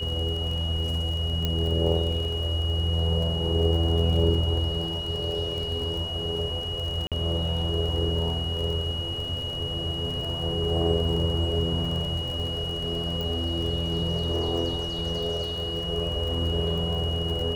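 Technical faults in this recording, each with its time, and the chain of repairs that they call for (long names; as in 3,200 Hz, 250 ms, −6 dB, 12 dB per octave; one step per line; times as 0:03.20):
surface crackle 37 per second −32 dBFS
whistle 2,900 Hz −31 dBFS
0:01.45: click −13 dBFS
0:07.07–0:07.12: drop-out 47 ms
0:13.21: click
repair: click removal
notch filter 2,900 Hz, Q 30
repair the gap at 0:07.07, 47 ms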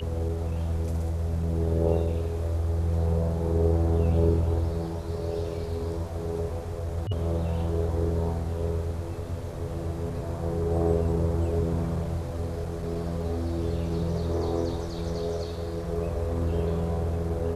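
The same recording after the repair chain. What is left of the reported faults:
0:01.45: click
0:13.21: click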